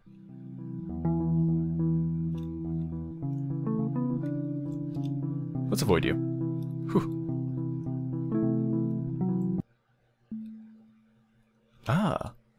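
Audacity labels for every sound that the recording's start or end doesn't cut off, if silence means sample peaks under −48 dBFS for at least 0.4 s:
10.320000	10.730000	sound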